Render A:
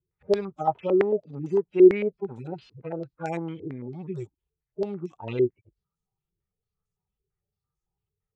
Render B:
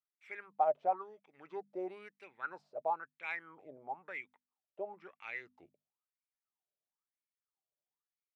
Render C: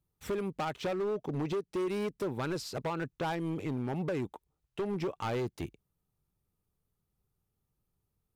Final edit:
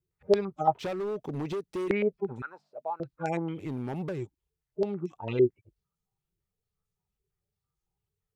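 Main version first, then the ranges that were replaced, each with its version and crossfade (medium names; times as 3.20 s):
A
0.79–1.90 s: from C
2.42–3.00 s: from B
3.62–4.16 s: from C, crossfade 0.24 s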